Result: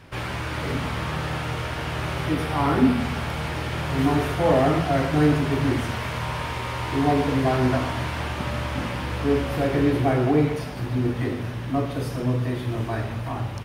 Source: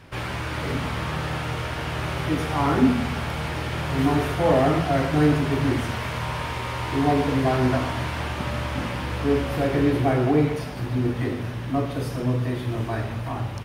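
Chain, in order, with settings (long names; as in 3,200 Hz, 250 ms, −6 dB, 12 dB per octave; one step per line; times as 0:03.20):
0:02.32–0:03.00: parametric band 6,600 Hz −5.5 dB 0.36 octaves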